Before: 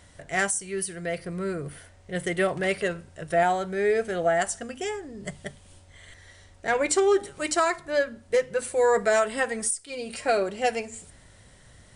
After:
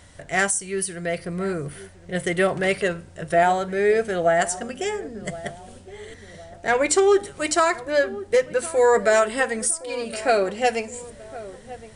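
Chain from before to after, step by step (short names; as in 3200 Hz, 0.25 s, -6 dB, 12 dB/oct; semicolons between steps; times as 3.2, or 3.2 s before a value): darkening echo 1.065 s, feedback 48%, low-pass 1000 Hz, level -15.5 dB; gain +4 dB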